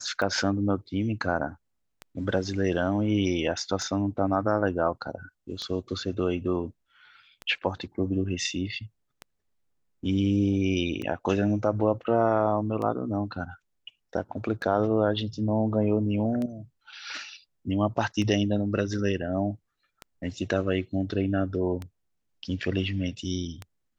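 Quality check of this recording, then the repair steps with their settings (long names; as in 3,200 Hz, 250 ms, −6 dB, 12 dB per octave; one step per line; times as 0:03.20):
scratch tick 33 1/3 rpm −21 dBFS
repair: click removal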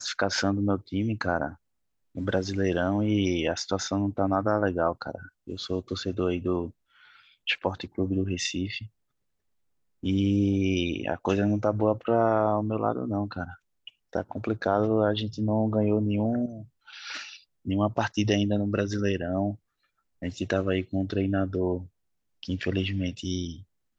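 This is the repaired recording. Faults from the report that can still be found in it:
none of them is left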